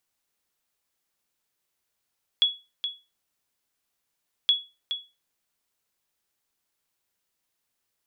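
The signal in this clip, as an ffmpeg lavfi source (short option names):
-f lavfi -i "aevalsrc='0.237*(sin(2*PI*3370*mod(t,2.07))*exp(-6.91*mod(t,2.07)/0.27)+0.335*sin(2*PI*3370*max(mod(t,2.07)-0.42,0))*exp(-6.91*max(mod(t,2.07)-0.42,0)/0.27))':d=4.14:s=44100"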